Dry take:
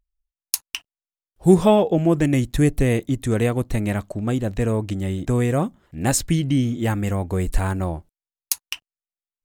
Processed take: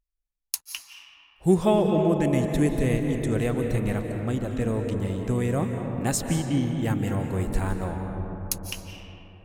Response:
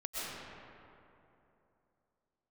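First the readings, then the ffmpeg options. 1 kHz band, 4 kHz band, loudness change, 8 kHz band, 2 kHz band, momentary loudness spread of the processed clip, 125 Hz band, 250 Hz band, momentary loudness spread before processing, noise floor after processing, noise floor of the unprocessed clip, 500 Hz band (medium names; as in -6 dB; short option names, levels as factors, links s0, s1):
-4.5 dB, -5.5 dB, -4.5 dB, -5.5 dB, -4.5 dB, 12 LU, -4.5 dB, -4.0 dB, 10 LU, -79 dBFS, under -85 dBFS, -4.0 dB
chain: -filter_complex "[0:a]asplit=2[s0][s1];[1:a]atrim=start_sample=2205,asetrate=32193,aresample=44100[s2];[s1][s2]afir=irnorm=-1:irlink=0,volume=0.473[s3];[s0][s3]amix=inputs=2:normalize=0,volume=0.376"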